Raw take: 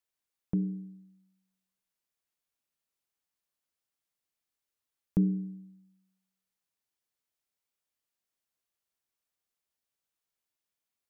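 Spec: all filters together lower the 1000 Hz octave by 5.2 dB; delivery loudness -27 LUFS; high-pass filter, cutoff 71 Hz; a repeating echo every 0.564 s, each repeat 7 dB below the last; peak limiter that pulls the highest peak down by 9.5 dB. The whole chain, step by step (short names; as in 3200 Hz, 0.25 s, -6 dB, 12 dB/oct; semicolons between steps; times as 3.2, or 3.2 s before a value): HPF 71 Hz; bell 1000 Hz -7.5 dB; limiter -25.5 dBFS; feedback echo 0.564 s, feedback 45%, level -7 dB; gain +12.5 dB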